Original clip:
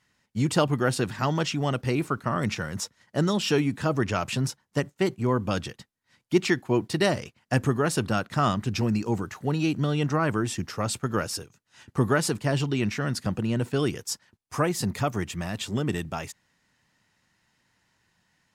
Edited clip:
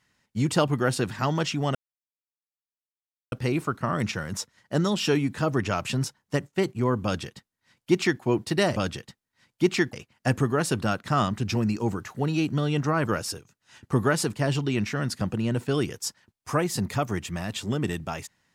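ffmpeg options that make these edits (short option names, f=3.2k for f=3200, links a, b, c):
-filter_complex "[0:a]asplit=5[a][b][c][d][e];[a]atrim=end=1.75,asetpts=PTS-STARTPTS,afade=t=out:st=1.746:d=0.004:c=hsin,apad=pad_dur=1.57[f];[b]atrim=start=1.75:end=7.192,asetpts=PTS-STARTPTS,afade=t=in:d=0.004:c=hsin[g];[c]atrim=start=5.468:end=6.642[h];[d]atrim=start=7.188:end=10.332[i];[e]atrim=start=11.118[j];[f][g]concat=n=2:v=0:a=1[k];[k][h]acrossfade=d=0.004:c1=hsin:c2=hsin[l];[l][i]acrossfade=d=0.004:c1=hsin:c2=hsin[m];[m][j]acrossfade=d=0.004:c1=hsin:c2=hsin"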